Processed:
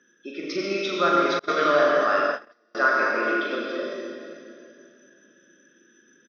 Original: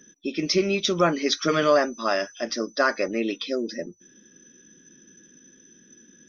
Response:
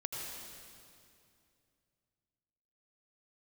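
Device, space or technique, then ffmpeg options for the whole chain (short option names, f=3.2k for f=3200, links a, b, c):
station announcement: -filter_complex "[0:a]highpass=310,lowpass=3.6k,equalizer=f=1.4k:t=o:w=0.5:g=9,aecho=1:1:40.82|212.8:0.562|0.282[a];[1:a]atrim=start_sample=2205[b];[a][b]afir=irnorm=-1:irlink=0,asettb=1/sr,asplit=3[c][d][e];[c]atrim=end=1.394[f];[d]atrim=start=1.39:end=2.75,asetpts=PTS-STARTPTS,afade=t=in:d=0.004:c=qsin,afade=t=out:st=1.356:d=0.004:c=qsin,agate=range=-36dB:threshold=-19dB:ratio=16:detection=peak[g];[e]atrim=start=2.746[h];[f][g]acrossfade=d=0.004:c1=hsin:c2=qsin[i];[i][h]acrossfade=d=0.004:c1=qsin:c2=hsin,volume=-3dB"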